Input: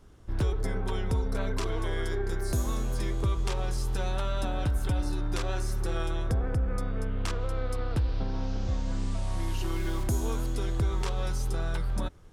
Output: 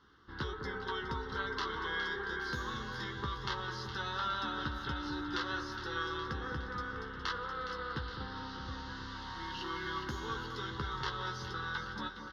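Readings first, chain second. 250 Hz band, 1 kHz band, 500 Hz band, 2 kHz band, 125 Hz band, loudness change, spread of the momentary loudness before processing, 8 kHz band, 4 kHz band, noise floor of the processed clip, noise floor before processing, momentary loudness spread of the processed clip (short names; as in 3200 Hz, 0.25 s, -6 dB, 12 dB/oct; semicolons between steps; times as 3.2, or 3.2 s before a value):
-7.5 dB, +1.5 dB, -8.0 dB, +4.5 dB, -14.0 dB, -6.5 dB, 3 LU, -14.0 dB, +2.0 dB, -45 dBFS, -32 dBFS, 6 LU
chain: HPF 1300 Hz 6 dB/oct; air absorption 210 m; fixed phaser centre 2400 Hz, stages 6; doubler 14 ms -6 dB; echo with dull and thin repeats by turns 0.207 s, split 1700 Hz, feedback 76%, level -7.5 dB; gain +8 dB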